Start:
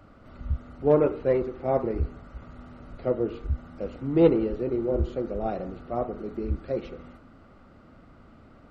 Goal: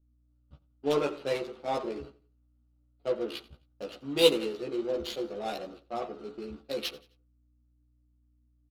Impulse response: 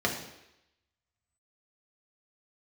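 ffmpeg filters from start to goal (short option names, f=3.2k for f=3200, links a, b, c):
-filter_complex "[0:a]highpass=190,tiltshelf=f=890:g=-6,agate=range=-34dB:threshold=-44dB:ratio=16:detection=peak,acontrast=24,aeval=exprs='val(0)+0.00126*(sin(2*PI*60*n/s)+sin(2*PI*2*60*n/s)/2+sin(2*PI*3*60*n/s)/3+sin(2*PI*4*60*n/s)/4+sin(2*PI*5*60*n/s)/5)':c=same,flanger=delay=3.6:depth=3.8:regen=71:speed=1.2:shape=sinusoidal,aexciter=amount=15.1:drive=5.1:freq=3k,adynamicsmooth=sensitivity=3.5:basefreq=820,asplit=2[a][b];[b]adelay=14,volume=-2.5dB[c];[a][c]amix=inputs=2:normalize=0,aecho=1:1:87|174|261:0.0944|0.033|0.0116,volume=-5dB"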